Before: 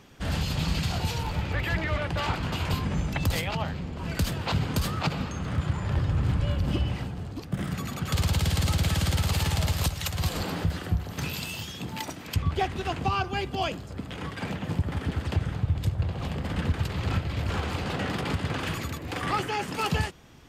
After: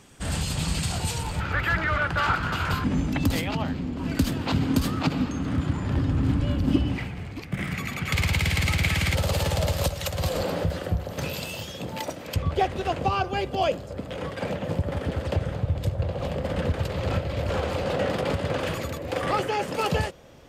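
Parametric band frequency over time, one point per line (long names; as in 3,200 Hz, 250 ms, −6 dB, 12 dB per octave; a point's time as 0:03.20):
parametric band +14.5 dB 0.54 octaves
8,400 Hz
from 0:01.40 1,400 Hz
from 0:02.84 270 Hz
from 0:06.98 2,200 Hz
from 0:09.15 550 Hz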